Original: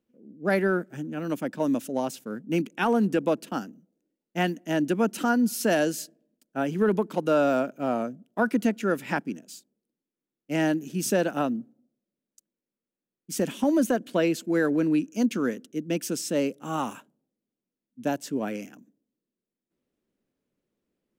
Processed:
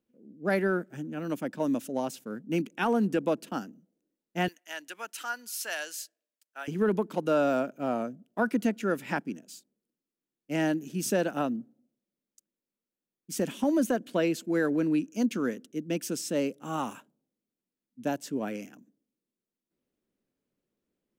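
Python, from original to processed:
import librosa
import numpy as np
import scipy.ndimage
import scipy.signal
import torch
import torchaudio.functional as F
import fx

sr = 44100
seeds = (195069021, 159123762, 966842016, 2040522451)

y = fx.highpass(x, sr, hz=1300.0, slope=12, at=(4.48, 6.68))
y = y * 10.0 ** (-3.0 / 20.0)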